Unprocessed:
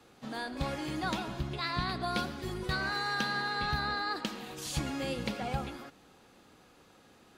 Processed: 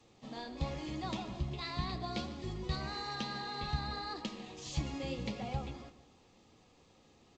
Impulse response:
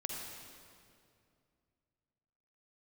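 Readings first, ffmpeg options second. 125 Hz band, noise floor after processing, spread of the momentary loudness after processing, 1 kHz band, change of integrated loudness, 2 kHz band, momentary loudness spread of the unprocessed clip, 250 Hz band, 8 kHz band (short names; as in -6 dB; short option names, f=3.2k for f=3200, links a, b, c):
-1.0 dB, -65 dBFS, 7 LU, -6.5 dB, -5.5 dB, -12.0 dB, 8 LU, -4.0 dB, -7.0 dB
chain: -filter_complex "[0:a]acrossover=split=130|720|5200[a][b][c][d];[a]acontrast=41[e];[e][b][c][d]amix=inputs=4:normalize=0,flanger=delay=8.9:depth=4.6:regen=-52:speed=0.92:shape=sinusoidal,equalizer=f=1.5k:t=o:w=0.32:g=-14,asplit=2[f][g];[g]adelay=148,lowpass=f=1.7k:p=1,volume=-13.5dB,asplit=2[h][i];[i]adelay=148,lowpass=f=1.7k:p=1,volume=0.34,asplit=2[j][k];[k]adelay=148,lowpass=f=1.7k:p=1,volume=0.34[l];[f][h][j][l]amix=inputs=4:normalize=0,volume=-1dB" -ar 16000 -c:a g722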